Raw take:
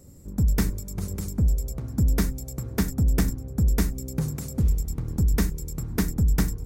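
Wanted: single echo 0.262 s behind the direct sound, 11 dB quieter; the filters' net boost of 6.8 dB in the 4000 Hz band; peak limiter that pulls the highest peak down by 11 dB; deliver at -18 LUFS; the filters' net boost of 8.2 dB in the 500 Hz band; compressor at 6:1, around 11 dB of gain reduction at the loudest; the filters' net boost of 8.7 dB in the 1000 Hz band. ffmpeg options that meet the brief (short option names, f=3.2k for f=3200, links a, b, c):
-af "equalizer=f=500:t=o:g=8.5,equalizer=f=1k:t=o:g=8,equalizer=f=4k:t=o:g=8.5,acompressor=threshold=-29dB:ratio=6,alimiter=limit=-24dB:level=0:latency=1,aecho=1:1:262:0.282,volume=17dB"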